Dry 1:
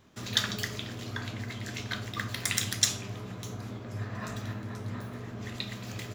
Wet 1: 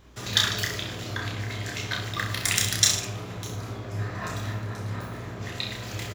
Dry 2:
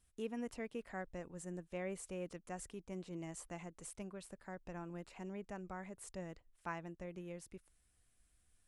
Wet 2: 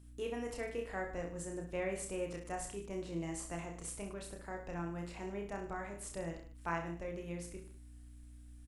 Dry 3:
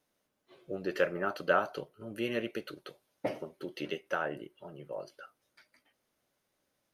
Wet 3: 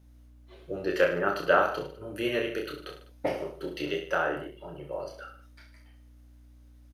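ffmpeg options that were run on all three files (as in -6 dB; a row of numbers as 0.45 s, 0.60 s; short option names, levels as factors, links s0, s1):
-af "equalizer=f=220:w=6.2:g=-14,aeval=exprs='val(0)+0.001*(sin(2*PI*60*n/s)+sin(2*PI*2*60*n/s)/2+sin(2*PI*3*60*n/s)/3+sin(2*PI*4*60*n/s)/4+sin(2*PI*5*60*n/s)/5)':c=same,aecho=1:1:30|64.5|104.2|149.8|202.3:0.631|0.398|0.251|0.158|0.1,volume=1.58"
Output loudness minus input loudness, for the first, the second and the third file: +6.0 LU, +5.0 LU, +5.5 LU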